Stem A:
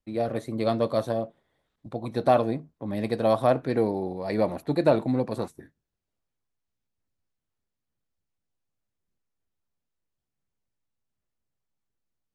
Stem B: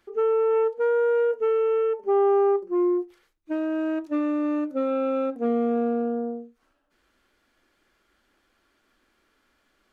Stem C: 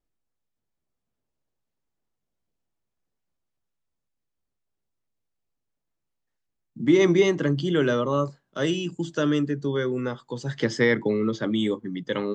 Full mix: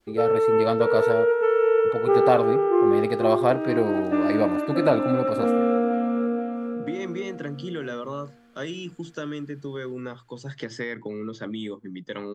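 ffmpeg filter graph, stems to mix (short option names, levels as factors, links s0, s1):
-filter_complex "[0:a]volume=1,asplit=2[s0][s1];[1:a]volume=1.19,asplit=2[s2][s3];[s3]volume=0.531[s4];[2:a]bandreject=f=60:t=h:w=6,bandreject=f=120:t=h:w=6,acompressor=threshold=0.0631:ratio=6,volume=0.562[s5];[s1]apad=whole_len=437779[s6];[s2][s6]sidechaincompress=threshold=0.0891:ratio=8:attack=5.8:release=353[s7];[s4]aecho=0:1:479|958|1437|1916|2395|2874:1|0.46|0.212|0.0973|0.0448|0.0206[s8];[s0][s7][s5][s8]amix=inputs=4:normalize=0,adynamicequalizer=threshold=0.00891:dfrequency=1800:dqfactor=0.91:tfrequency=1800:tqfactor=0.91:attack=5:release=100:ratio=0.375:range=2:mode=boostabove:tftype=bell"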